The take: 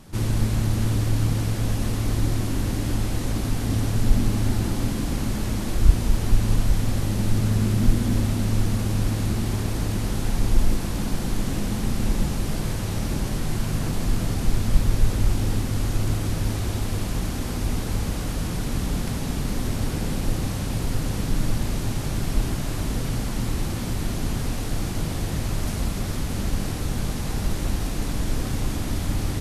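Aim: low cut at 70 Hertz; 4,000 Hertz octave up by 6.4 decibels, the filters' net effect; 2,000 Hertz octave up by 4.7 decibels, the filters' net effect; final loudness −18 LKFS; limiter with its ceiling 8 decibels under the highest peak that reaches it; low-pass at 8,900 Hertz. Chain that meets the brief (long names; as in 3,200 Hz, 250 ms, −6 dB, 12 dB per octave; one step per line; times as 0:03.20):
high-pass filter 70 Hz
low-pass filter 8,900 Hz
parametric band 2,000 Hz +4 dB
parametric band 4,000 Hz +7 dB
level +9.5 dB
brickwall limiter −7 dBFS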